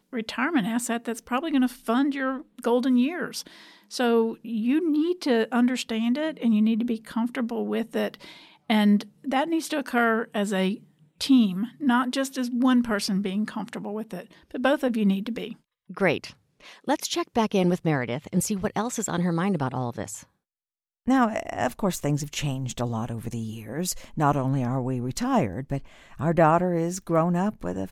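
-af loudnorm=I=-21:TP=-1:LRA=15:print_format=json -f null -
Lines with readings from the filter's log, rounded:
"input_i" : "-25.5",
"input_tp" : "-7.6",
"input_lra" : "3.8",
"input_thresh" : "-35.9",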